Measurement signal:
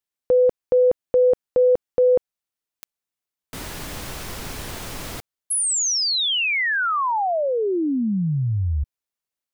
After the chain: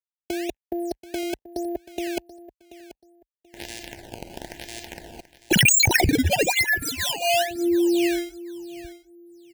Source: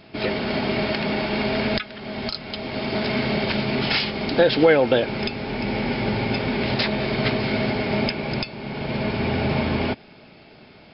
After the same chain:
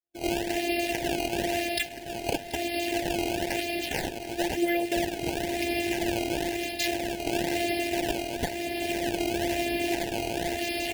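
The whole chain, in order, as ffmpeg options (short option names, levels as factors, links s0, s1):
-af "afftfilt=real='hypot(re,im)*cos(PI*b)':imag='0':win_size=512:overlap=0.75,areverse,acompressor=threshold=0.0112:ratio=12:attack=0.53:release=999:knee=1:detection=rms,areverse,highpass=f=43:w=0.5412,highpass=f=43:w=1.3066,bass=f=250:g=0,treble=f=4000:g=5,agate=range=0.00178:threshold=0.00251:ratio=3:release=160:detection=peak,acrusher=samples=14:mix=1:aa=0.000001:lfo=1:lforange=22.4:lforate=1,asuperstop=centerf=1200:order=8:qfactor=1.8,aecho=1:1:733|1466:0.158|0.0396,dynaudnorm=f=100:g=3:m=5.62,adynamicequalizer=threshold=0.00251:dfrequency=2700:dqfactor=4.8:tfrequency=2700:tqfactor=4.8:attack=5:release=100:ratio=0.375:range=3:mode=boostabove:tftype=bell,volume=2.11"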